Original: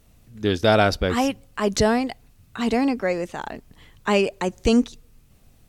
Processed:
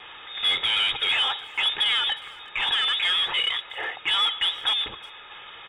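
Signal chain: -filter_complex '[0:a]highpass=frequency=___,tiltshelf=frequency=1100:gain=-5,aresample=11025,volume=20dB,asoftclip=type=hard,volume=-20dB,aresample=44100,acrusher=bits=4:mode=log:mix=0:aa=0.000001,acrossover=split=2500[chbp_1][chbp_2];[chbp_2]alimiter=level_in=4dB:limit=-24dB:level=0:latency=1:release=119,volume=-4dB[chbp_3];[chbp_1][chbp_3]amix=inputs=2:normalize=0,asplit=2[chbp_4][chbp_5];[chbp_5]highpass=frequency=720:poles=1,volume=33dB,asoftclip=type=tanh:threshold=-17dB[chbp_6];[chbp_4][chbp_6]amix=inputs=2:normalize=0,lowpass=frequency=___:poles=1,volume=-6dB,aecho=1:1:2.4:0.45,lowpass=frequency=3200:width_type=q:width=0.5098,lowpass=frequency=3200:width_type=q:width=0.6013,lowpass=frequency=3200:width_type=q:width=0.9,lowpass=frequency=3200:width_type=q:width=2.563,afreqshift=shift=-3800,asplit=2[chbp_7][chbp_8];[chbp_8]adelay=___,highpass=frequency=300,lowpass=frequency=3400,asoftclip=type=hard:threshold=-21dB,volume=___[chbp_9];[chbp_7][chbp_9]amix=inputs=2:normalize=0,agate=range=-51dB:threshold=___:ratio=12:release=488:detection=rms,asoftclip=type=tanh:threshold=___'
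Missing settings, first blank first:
67, 2500, 360, -20dB, -53dB, -12.5dB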